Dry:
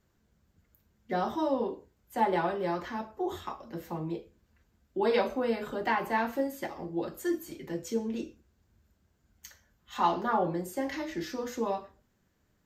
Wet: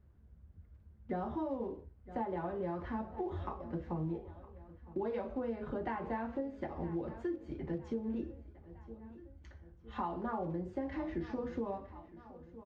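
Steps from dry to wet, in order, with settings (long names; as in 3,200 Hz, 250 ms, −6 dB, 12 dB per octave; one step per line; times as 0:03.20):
one scale factor per block 5 bits
head-to-tape spacing loss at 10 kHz 43 dB
repeating echo 961 ms, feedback 48%, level −21.5 dB
downward compressor 6 to 1, threshold −37 dBFS, peak gain reduction 12.5 dB
parametric band 67 Hz +14.5 dB 1.5 octaves
level +1.5 dB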